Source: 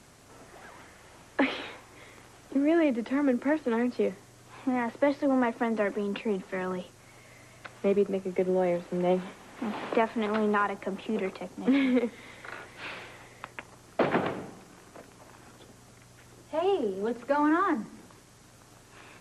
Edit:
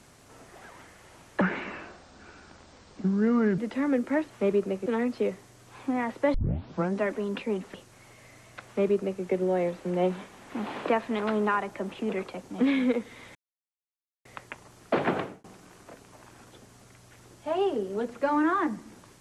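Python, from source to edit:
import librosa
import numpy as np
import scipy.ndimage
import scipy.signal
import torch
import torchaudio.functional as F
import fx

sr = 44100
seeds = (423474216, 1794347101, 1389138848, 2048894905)

y = fx.edit(x, sr, fx.speed_span(start_s=1.41, length_s=1.52, speed=0.7),
    fx.tape_start(start_s=5.13, length_s=0.67),
    fx.cut(start_s=6.53, length_s=0.28),
    fx.duplicate(start_s=7.73, length_s=0.56, to_s=3.65),
    fx.silence(start_s=12.42, length_s=0.9),
    fx.fade_out_span(start_s=14.26, length_s=0.25), tone=tone)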